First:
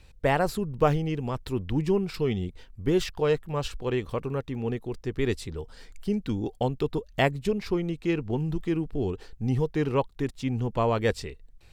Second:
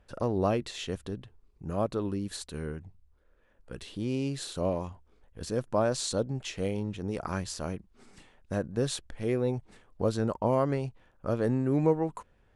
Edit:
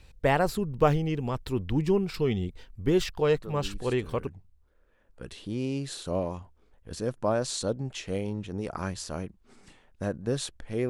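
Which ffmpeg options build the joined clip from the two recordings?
ffmpeg -i cue0.wav -i cue1.wav -filter_complex "[1:a]asplit=2[link_01][link_02];[0:a]apad=whole_dur=10.89,atrim=end=10.89,atrim=end=4.272[link_03];[link_02]atrim=start=2.768:end=9.39[link_04];[link_01]atrim=start=1.86:end=2.77,asetpts=PTS-STARTPTS,volume=-10dB,afade=type=in:duration=0.004:curve=hsin,afade=type=out:start_time=0.906:duration=0.004:curve=hsin,adelay=3360[link_05];[link_03][link_04]acrossfade=duration=0.004:curve1=hsin:curve2=hsin[link_06];[link_06][link_05]amix=inputs=2:normalize=0" out.wav

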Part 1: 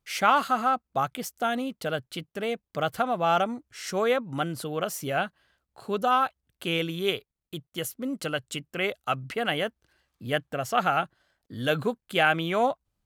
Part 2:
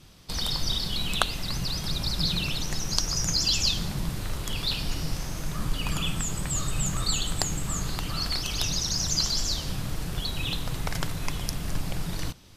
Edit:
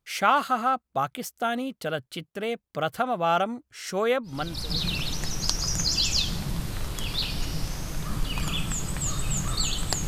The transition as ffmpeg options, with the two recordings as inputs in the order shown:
ffmpeg -i cue0.wav -i cue1.wav -filter_complex "[0:a]apad=whole_dur=10.07,atrim=end=10.07,atrim=end=4.87,asetpts=PTS-STARTPTS[link_01];[1:a]atrim=start=1.72:end=7.56,asetpts=PTS-STARTPTS[link_02];[link_01][link_02]acrossfade=duration=0.64:curve1=tri:curve2=tri" out.wav

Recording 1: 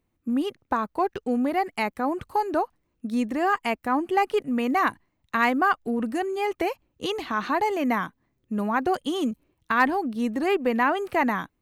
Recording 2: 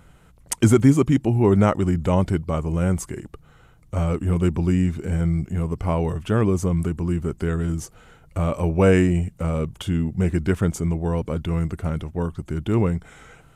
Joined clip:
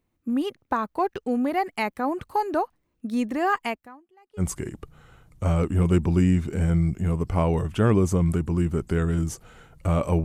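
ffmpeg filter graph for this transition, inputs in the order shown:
ffmpeg -i cue0.wav -i cue1.wav -filter_complex "[0:a]asettb=1/sr,asplit=3[link_01][link_02][link_03];[link_01]atrim=end=3.604[link_04];[link_02]atrim=start=3.6:end=4.43,asetpts=PTS-STARTPTS,afade=type=in:duration=0.004:curve=qsin,afade=type=out:start_time=0.826:duration=0.004:curve=qsin,aeval=exprs='val(0)*pow(10,-35*(0.5-0.5*cos(2*PI*0.89*n/s))/20)':channel_layout=same[link_05];[link_03]atrim=start=4.426[link_06];[link_04][link_05]acrossfade=duration=0.004:curve1=hsin:curve2=qsin[link_07];[link_07][link_06]acrossfade=duration=0.004:curve1=qsin:curve2=hsin,apad=whole_dur=10.24,atrim=end=10.24,atrim=end=4.43,asetpts=PTS-STARTPTS[link_08];[1:a]atrim=start=2.88:end=8.75,asetpts=PTS-STARTPTS[link_09];[link_08][link_09]acrossfade=duration=0.06:curve1=tri:curve2=tri" out.wav

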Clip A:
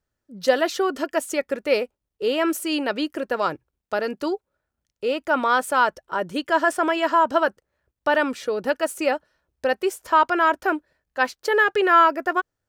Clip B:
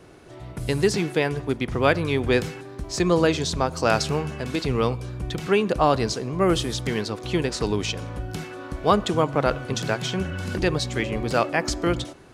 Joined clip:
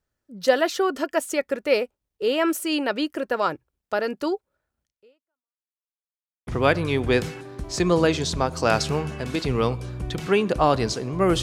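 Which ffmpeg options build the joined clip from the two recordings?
ffmpeg -i cue0.wav -i cue1.wav -filter_complex "[0:a]apad=whole_dur=11.42,atrim=end=11.42,asplit=2[link_01][link_02];[link_01]atrim=end=5.6,asetpts=PTS-STARTPTS,afade=type=out:start_time=4.83:duration=0.77:curve=exp[link_03];[link_02]atrim=start=5.6:end=6.47,asetpts=PTS-STARTPTS,volume=0[link_04];[1:a]atrim=start=1.67:end=6.62,asetpts=PTS-STARTPTS,afade=type=in:duration=0.004:curve=hsin[link_05];[link_03][link_04][link_05]concat=n=3:v=0:a=1" out.wav

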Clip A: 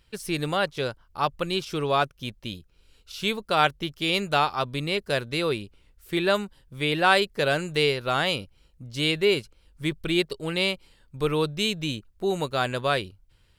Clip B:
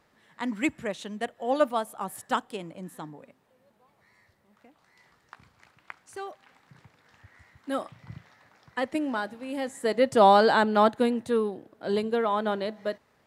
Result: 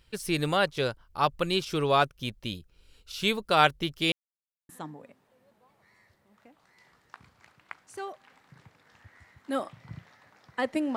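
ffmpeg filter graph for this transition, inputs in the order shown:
ffmpeg -i cue0.wav -i cue1.wav -filter_complex "[0:a]apad=whole_dur=10.96,atrim=end=10.96,asplit=2[link_01][link_02];[link_01]atrim=end=4.12,asetpts=PTS-STARTPTS,afade=type=out:start_time=4.116:duration=0.004:curve=hsin[link_03];[link_02]atrim=start=4.12:end=4.69,asetpts=PTS-STARTPTS,volume=0[link_04];[1:a]atrim=start=2.88:end=9.15,asetpts=PTS-STARTPTS,afade=type=in:duration=0.004:curve=hsin[link_05];[link_03][link_04][link_05]concat=n=3:v=0:a=1" out.wav

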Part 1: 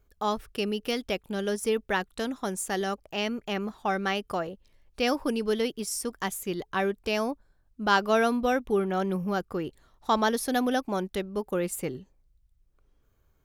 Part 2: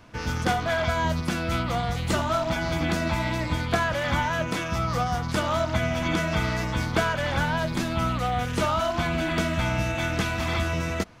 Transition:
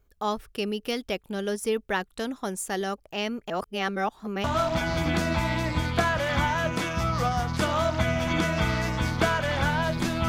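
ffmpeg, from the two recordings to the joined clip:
ffmpeg -i cue0.wav -i cue1.wav -filter_complex "[0:a]apad=whole_dur=10.28,atrim=end=10.28,asplit=2[link_01][link_02];[link_01]atrim=end=3.502[link_03];[link_02]atrim=start=3.498:end=4.442,asetpts=PTS-STARTPTS,areverse[link_04];[1:a]atrim=start=2.188:end=8.03[link_05];[link_03][link_04]acrossfade=duration=0.004:curve1=hsin:curve2=hsin[link_06];[link_06][link_05]acrossfade=duration=0.004:curve1=hsin:curve2=hsin" out.wav

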